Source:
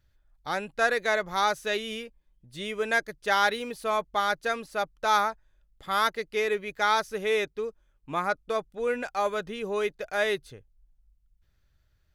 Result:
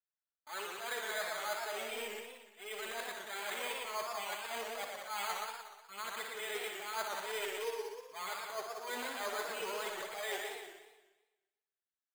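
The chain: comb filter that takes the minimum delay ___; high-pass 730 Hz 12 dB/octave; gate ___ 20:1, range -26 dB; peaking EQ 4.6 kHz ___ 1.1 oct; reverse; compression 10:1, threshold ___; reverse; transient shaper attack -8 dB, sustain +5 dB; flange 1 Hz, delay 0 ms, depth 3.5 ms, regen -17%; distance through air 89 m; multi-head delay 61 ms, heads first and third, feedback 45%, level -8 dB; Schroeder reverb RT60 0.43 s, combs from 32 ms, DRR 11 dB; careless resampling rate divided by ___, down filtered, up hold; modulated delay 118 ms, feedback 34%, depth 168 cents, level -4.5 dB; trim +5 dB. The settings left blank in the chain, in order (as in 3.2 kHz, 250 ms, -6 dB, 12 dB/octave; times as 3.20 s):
4.6 ms, -49 dBFS, +3.5 dB, -36 dBFS, 8×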